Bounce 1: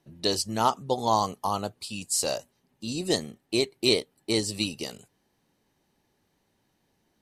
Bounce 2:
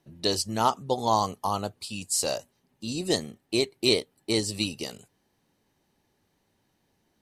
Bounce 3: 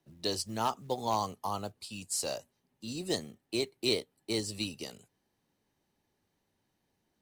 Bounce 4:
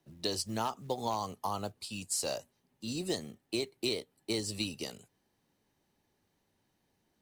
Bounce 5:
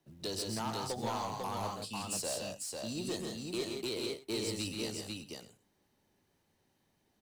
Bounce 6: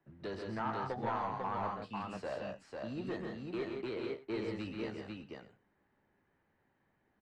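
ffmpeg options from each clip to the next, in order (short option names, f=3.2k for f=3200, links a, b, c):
-af "equalizer=f=94:w=5.2:g=3"
-filter_complex "[0:a]acrossover=split=150|600|3200[a][b][c][d];[c]volume=16.5dB,asoftclip=hard,volume=-16.5dB[e];[a][b][e][d]amix=inputs=4:normalize=0,acrusher=bits=6:mode=log:mix=0:aa=0.000001,volume=-7dB"
-af "acompressor=threshold=-31dB:ratio=6,volume=2dB"
-af "asoftclip=type=tanh:threshold=-30dB,aecho=1:1:131|168|497|597:0.531|0.531|0.668|0.112,volume=-1.5dB"
-filter_complex "[0:a]lowpass=f=1.7k:t=q:w=2,asplit=2[a][b];[b]adelay=15,volume=-11.5dB[c];[a][c]amix=inputs=2:normalize=0,volume=-1.5dB"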